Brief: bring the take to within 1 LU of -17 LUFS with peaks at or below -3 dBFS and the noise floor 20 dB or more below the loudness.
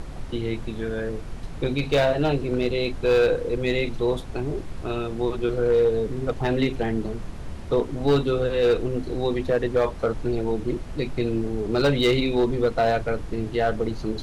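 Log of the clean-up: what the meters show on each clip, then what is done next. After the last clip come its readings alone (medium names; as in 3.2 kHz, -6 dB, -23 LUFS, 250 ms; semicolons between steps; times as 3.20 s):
clipped samples 1.1%; clipping level -14.0 dBFS; noise floor -35 dBFS; noise floor target -45 dBFS; loudness -24.5 LUFS; peak level -14.0 dBFS; loudness target -17.0 LUFS
-> clip repair -14 dBFS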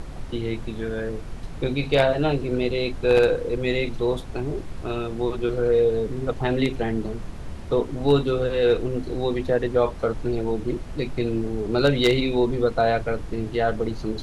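clipped samples 0.0%; noise floor -35 dBFS; noise floor target -44 dBFS
-> noise print and reduce 9 dB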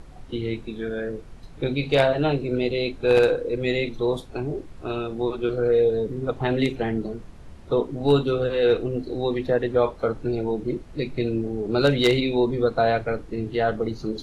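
noise floor -43 dBFS; noise floor target -44 dBFS
-> noise print and reduce 6 dB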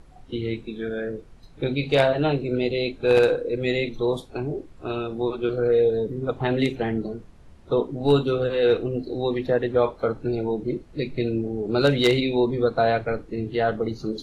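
noise floor -48 dBFS; loudness -24.0 LUFS; peak level -5.0 dBFS; loudness target -17.0 LUFS
-> trim +7 dB; peak limiter -3 dBFS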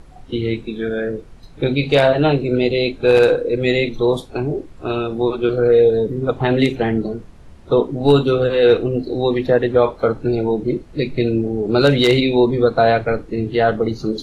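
loudness -17.5 LUFS; peak level -3.0 dBFS; noise floor -41 dBFS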